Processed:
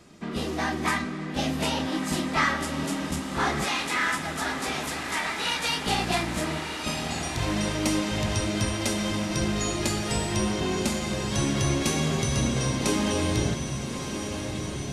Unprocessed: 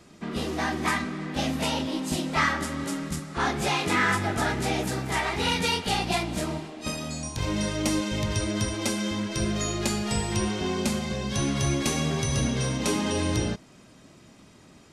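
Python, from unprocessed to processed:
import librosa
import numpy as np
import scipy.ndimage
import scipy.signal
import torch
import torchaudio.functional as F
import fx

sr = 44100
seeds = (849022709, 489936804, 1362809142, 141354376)

y = fx.highpass(x, sr, hz=1200.0, slope=6, at=(3.64, 5.84))
y = fx.echo_diffused(y, sr, ms=1249, feedback_pct=70, wet_db=-8.0)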